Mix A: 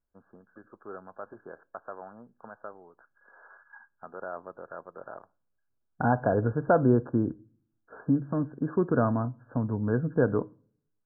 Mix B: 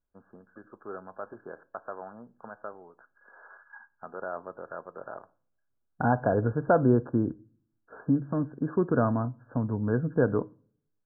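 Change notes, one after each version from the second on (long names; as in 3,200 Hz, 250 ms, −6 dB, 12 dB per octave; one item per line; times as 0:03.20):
first voice: send +8.5 dB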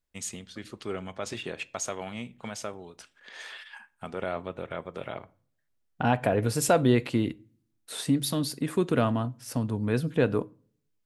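first voice: remove high-pass filter 670 Hz 6 dB per octave
master: remove linear-phase brick-wall low-pass 1,700 Hz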